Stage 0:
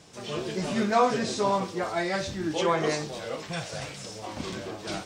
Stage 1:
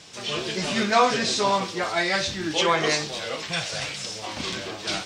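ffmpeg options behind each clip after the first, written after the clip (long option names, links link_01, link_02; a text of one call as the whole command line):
ffmpeg -i in.wav -af "equalizer=frequency=3500:width_type=o:width=2.8:gain=11" out.wav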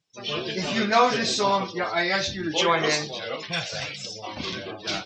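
ffmpeg -i in.wav -af "afftdn=noise_reduction=34:noise_floor=-36" out.wav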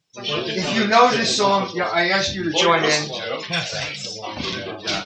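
ffmpeg -i in.wav -filter_complex "[0:a]asplit=2[link_01][link_02];[link_02]adelay=41,volume=-13dB[link_03];[link_01][link_03]amix=inputs=2:normalize=0,volume=5dB" out.wav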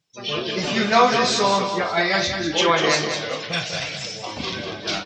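ffmpeg -i in.wav -af "aecho=1:1:196|392|588|784:0.422|0.152|0.0547|0.0197,volume=-2dB" out.wav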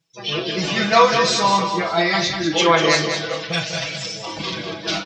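ffmpeg -i in.wav -af "aecho=1:1:6.1:0.92,volume=-1dB" out.wav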